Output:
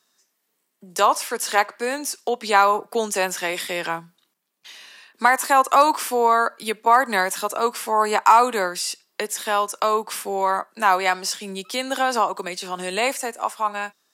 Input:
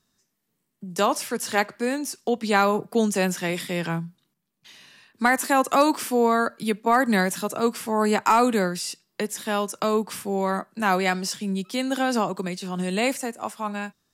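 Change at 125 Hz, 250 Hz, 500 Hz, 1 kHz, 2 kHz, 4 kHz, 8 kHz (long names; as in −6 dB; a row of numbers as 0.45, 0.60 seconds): below −10 dB, −8.5 dB, +0.5 dB, +6.0 dB, +3.0 dB, +3.5 dB, +3.5 dB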